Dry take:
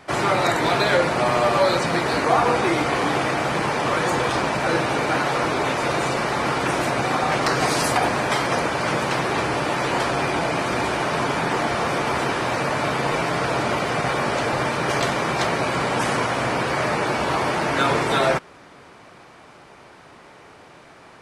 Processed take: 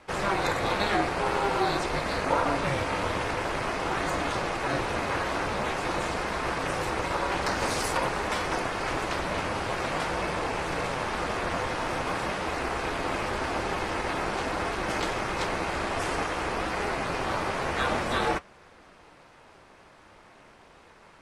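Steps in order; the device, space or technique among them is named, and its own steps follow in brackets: alien voice (ring modulator 200 Hz; flange 0.48 Hz, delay 3.6 ms, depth 8 ms, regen -68%)

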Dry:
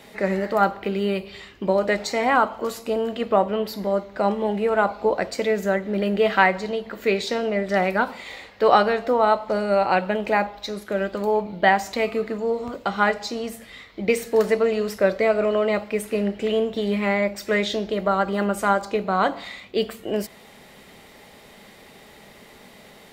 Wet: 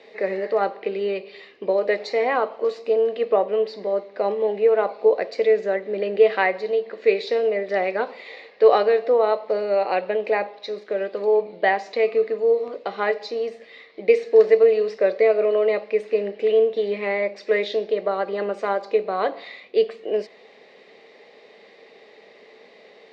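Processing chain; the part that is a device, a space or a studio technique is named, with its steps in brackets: phone earpiece (cabinet simulation 420–4400 Hz, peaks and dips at 450 Hz +9 dB, 910 Hz -7 dB, 1.4 kHz -10 dB, 3.2 kHz -7 dB)

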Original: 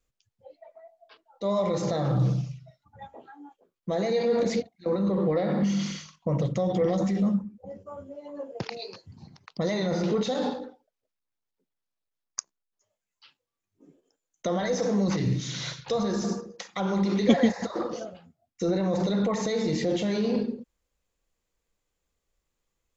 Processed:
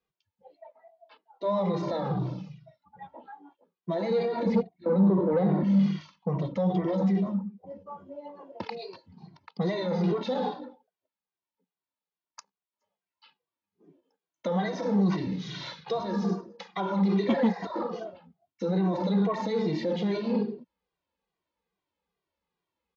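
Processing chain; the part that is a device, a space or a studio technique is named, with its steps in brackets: 4.46–6.01 s: tilt EQ -2.5 dB/octave; barber-pole flanger into a guitar amplifier (endless flanger 2 ms -2.4 Hz; saturation -17.5 dBFS, distortion -19 dB; cabinet simulation 99–4500 Hz, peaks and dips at 120 Hz -9 dB, 180 Hz +6 dB, 380 Hz +3 dB, 920 Hz +9 dB)

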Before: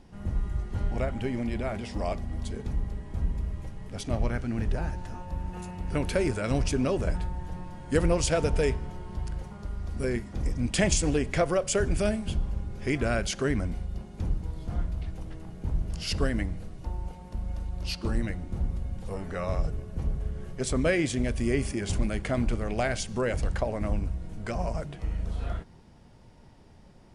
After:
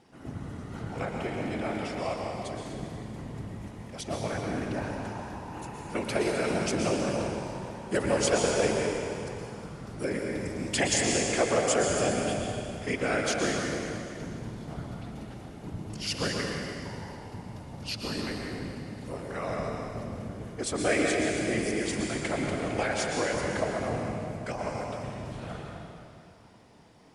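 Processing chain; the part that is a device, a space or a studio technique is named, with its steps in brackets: whispering ghost (whisper effect; high-pass 360 Hz 6 dB/octave; reverberation RT60 2.5 s, pre-delay 111 ms, DRR 0 dB)

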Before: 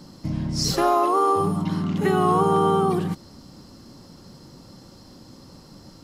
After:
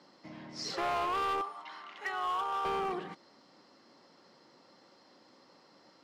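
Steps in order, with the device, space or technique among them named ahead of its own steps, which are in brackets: 1.41–2.65 s: high-pass 870 Hz 12 dB/octave; megaphone (band-pass 470–3800 Hz; peaking EQ 2 kHz +5 dB 0.39 oct; hard clipper -22 dBFS, distortion -10 dB); trim -7.5 dB

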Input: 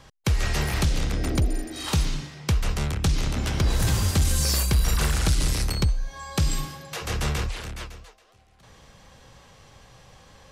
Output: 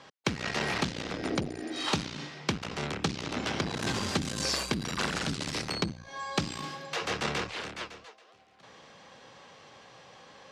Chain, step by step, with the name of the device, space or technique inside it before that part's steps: public-address speaker with an overloaded transformer (transformer saturation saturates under 110 Hz; band-pass 240–5100 Hz); trim +1.5 dB

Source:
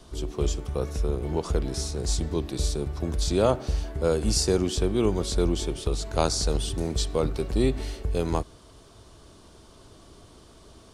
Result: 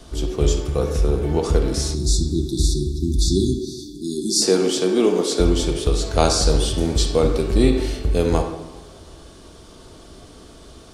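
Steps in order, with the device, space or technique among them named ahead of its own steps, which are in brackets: filtered reverb send (on a send at -5.5 dB: high-pass 230 Hz + low-pass 5.8 kHz + reverberation RT60 0.85 s, pre-delay 39 ms); 1.94–4.42 s: on the sum: spectral selection erased 400–3400 Hz; 3.59–5.40 s: high-pass 210 Hz 24 dB/octave; peaking EQ 990 Hz -5 dB 0.29 oct; two-slope reverb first 0.22 s, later 2.7 s, from -18 dB, DRR 9 dB; trim +6.5 dB

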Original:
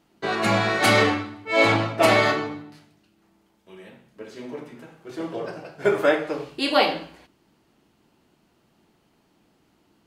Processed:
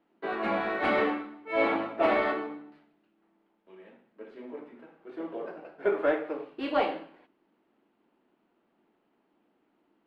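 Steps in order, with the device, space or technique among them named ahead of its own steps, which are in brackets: early wireless headset (high-pass 230 Hz 24 dB/octave; CVSD coder 64 kbps); distance through air 500 m; trim -4.5 dB

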